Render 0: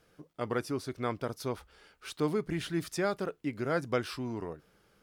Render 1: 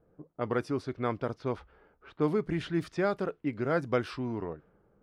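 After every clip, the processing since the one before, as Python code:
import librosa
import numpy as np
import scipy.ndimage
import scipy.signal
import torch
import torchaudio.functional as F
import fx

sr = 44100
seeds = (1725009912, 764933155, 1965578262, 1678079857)

y = fx.env_lowpass(x, sr, base_hz=720.0, full_db=-28.5)
y = fx.lowpass(y, sr, hz=2400.0, slope=6)
y = y * 10.0 ** (2.5 / 20.0)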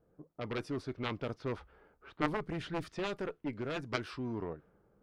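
y = fx.cheby_harmonics(x, sr, harmonics=(2, 3), levels_db=(-14, -6), full_scale_db=-14.5)
y = fx.rider(y, sr, range_db=10, speed_s=0.5)
y = y * 10.0 ** (2.5 / 20.0)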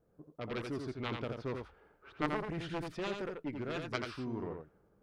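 y = x + 10.0 ** (-5.0 / 20.0) * np.pad(x, (int(85 * sr / 1000.0), 0))[:len(x)]
y = y * 10.0 ** (-2.0 / 20.0)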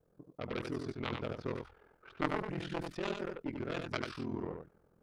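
y = x * np.sin(2.0 * np.pi * 21.0 * np.arange(len(x)) / sr)
y = y * 10.0 ** (3.0 / 20.0)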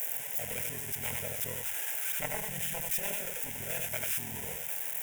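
y = x + 0.5 * 10.0 ** (-19.5 / 20.0) * np.diff(np.sign(x), prepend=np.sign(x[:1]))
y = fx.fixed_phaser(y, sr, hz=1200.0, stages=6)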